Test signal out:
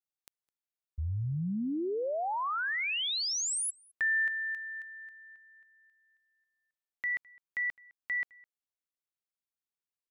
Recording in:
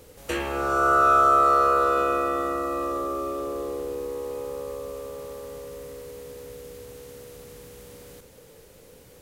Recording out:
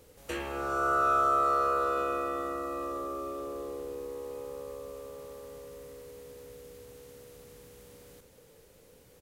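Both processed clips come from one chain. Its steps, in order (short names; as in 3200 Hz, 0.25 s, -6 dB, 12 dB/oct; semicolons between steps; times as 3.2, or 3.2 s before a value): outdoor echo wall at 36 m, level -24 dB; gain -7.5 dB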